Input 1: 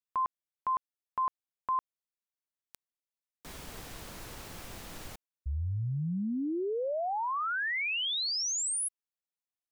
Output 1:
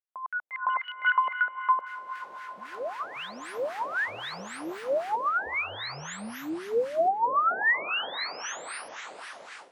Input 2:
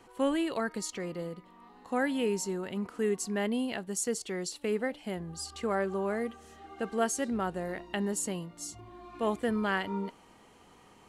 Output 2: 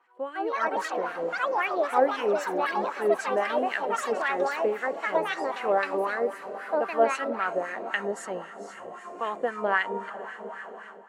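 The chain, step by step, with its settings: HPF 190 Hz 6 dB/oct; on a send: diffused feedback echo 0.481 s, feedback 70%, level -13 dB; on the sum: echoes that change speed 0.215 s, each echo +6 st, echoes 3; LFO band-pass sine 3.8 Hz 530–1800 Hz; AGC gain up to 13 dB; gain -1 dB

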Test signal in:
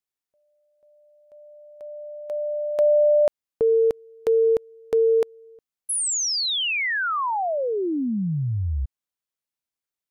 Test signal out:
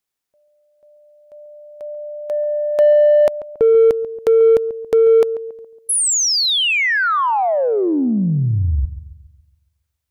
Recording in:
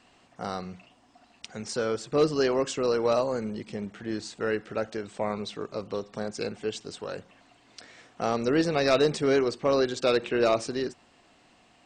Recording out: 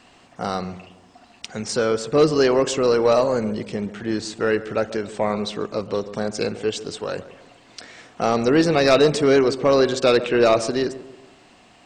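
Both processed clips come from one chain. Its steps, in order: darkening echo 0.139 s, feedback 47%, low-pass 1100 Hz, level -14 dB; in parallel at -7 dB: soft clip -22 dBFS; on the sum: gain +5 dB

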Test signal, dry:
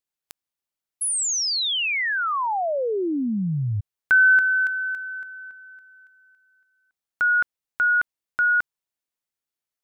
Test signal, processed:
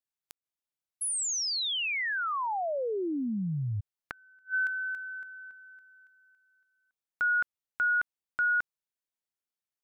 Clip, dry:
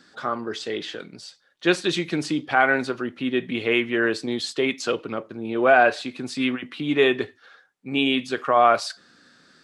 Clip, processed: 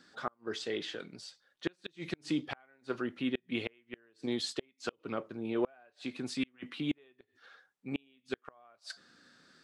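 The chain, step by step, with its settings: flipped gate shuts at -13 dBFS, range -37 dB; gain -7 dB

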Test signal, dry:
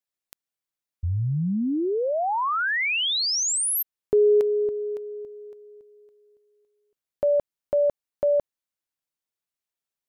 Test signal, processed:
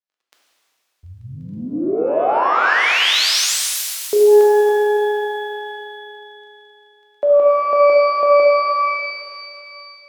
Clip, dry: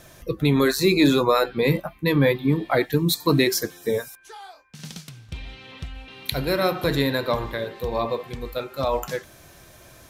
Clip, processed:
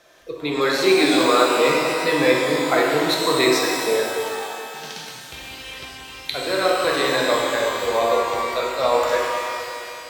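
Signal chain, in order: crackle 12/s -48 dBFS; AGC gain up to 8.5 dB; three-band isolator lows -19 dB, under 320 Hz, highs -13 dB, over 6100 Hz; shimmer reverb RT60 2.4 s, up +12 st, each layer -8 dB, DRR -2 dB; gain -4 dB

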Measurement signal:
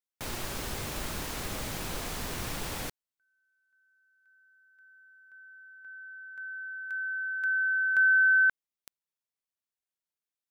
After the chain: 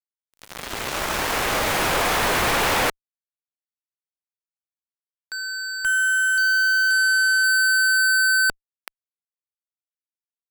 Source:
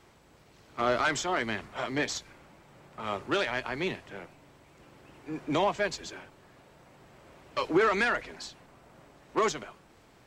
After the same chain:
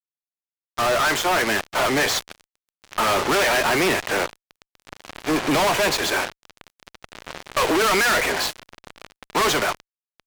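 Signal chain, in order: opening faded in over 3.22 s; three-band isolator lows -13 dB, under 410 Hz, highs -13 dB, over 3000 Hz; fuzz box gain 56 dB, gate -51 dBFS; gain -4.5 dB

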